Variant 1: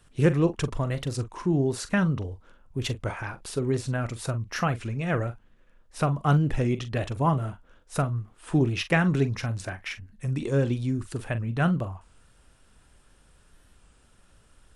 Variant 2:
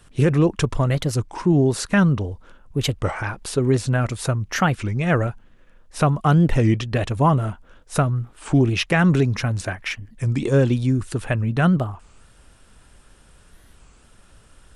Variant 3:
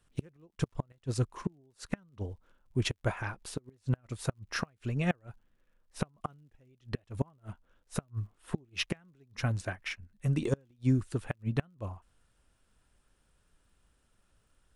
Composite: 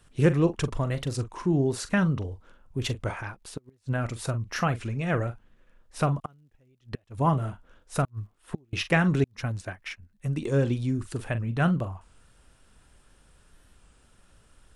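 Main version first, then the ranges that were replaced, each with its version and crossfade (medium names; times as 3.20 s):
1
3.21–3.93 s: from 3
6.20–7.18 s: from 3
8.05–8.73 s: from 3
9.24–10.45 s: from 3
not used: 2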